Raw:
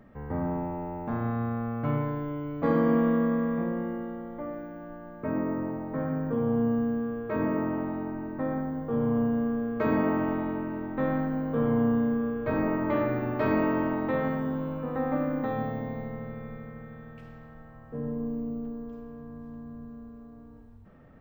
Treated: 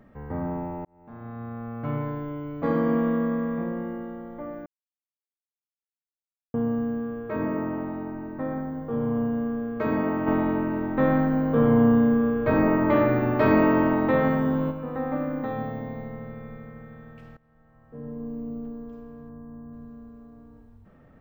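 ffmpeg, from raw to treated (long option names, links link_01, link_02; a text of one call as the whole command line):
ffmpeg -i in.wav -filter_complex "[0:a]asplit=3[link_01][link_02][link_03];[link_01]afade=type=out:start_time=10.26:duration=0.02[link_04];[link_02]acontrast=64,afade=type=in:start_time=10.26:duration=0.02,afade=type=out:start_time=14.7:duration=0.02[link_05];[link_03]afade=type=in:start_time=14.7:duration=0.02[link_06];[link_04][link_05][link_06]amix=inputs=3:normalize=0,asettb=1/sr,asplit=3[link_07][link_08][link_09];[link_07]atrim=end=19.294[link_10];[link_08]atrim=start=19.29:end=19.73,asetpts=PTS-STARTPTS,afade=type=in:duration=0.004:curve=qsin,afade=type=out:start_time=0.436:duration=0.004:curve=qsin,asuperstop=centerf=3900:order=4:qfactor=0.61[link_11];[link_09]atrim=start=19.726[link_12];[link_10][link_11]acrossfade=duration=0.004:curve1=hsin:curve2=qsin[link_13];[link_13][link_12]acrossfade=duration=0.004:curve1=qsin:curve2=hsin,asplit=5[link_14][link_15][link_16][link_17][link_18];[link_14]atrim=end=0.85,asetpts=PTS-STARTPTS,afade=type=out:start_time=0.846:duration=0.004:curve=hsin[link_19];[link_15]atrim=start=0.85:end=4.66,asetpts=PTS-STARTPTS,afade=type=in:duration=1.23,afade=type=out:start_time=3.806:duration=0.004:curve=hsin[link_20];[link_16]atrim=start=4.66:end=6.54,asetpts=PTS-STARTPTS,volume=0[link_21];[link_17]atrim=start=6.54:end=17.37,asetpts=PTS-STARTPTS,afade=type=in:duration=0.004:curve=hsin,afade=type=out:start_time=10.826:duration=0.004:curve=hsin:silence=0.0944061[link_22];[link_18]atrim=start=17.37,asetpts=PTS-STARTPTS,afade=type=in:duration=1.2:silence=0.0944061[link_23];[link_19][link_20][link_21][link_22][link_23]concat=n=5:v=0:a=1" out.wav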